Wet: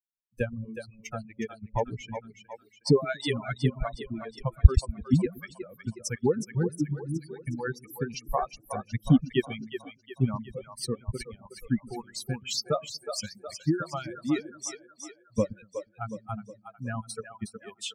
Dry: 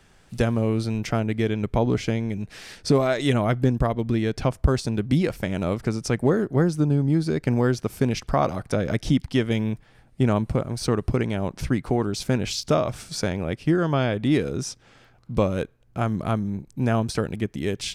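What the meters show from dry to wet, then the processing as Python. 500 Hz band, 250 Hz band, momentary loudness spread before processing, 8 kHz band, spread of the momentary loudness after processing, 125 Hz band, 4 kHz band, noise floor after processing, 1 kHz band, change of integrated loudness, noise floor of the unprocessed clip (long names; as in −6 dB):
−7.5 dB, −7.5 dB, 7 LU, −3.0 dB, 16 LU, −6.5 dB, −4.5 dB, −64 dBFS, −7.0 dB, −6.5 dB, −56 dBFS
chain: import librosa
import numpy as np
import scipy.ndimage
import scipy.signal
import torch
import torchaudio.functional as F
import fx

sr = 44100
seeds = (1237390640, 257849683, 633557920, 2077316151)

p1 = fx.bin_expand(x, sr, power=3.0)
p2 = fx.high_shelf(p1, sr, hz=4500.0, db=5.0)
p3 = p2 + fx.echo_split(p2, sr, split_hz=330.0, low_ms=121, high_ms=365, feedback_pct=52, wet_db=-7.5, dry=0)
p4 = fx.dereverb_blind(p3, sr, rt60_s=1.8)
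p5 = fx.low_shelf(p4, sr, hz=280.0, db=8.5)
p6 = fx.hpss(p5, sr, part='percussive', gain_db=9)
y = p6 * 10.0 ** (-8.0 / 20.0)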